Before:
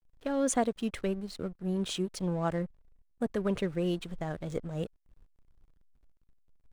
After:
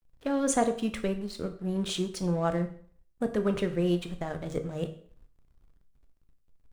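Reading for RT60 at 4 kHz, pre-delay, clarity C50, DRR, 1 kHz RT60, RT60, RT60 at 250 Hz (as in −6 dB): 0.50 s, 7 ms, 12.5 dB, 7.0 dB, 0.50 s, 0.50 s, 0.50 s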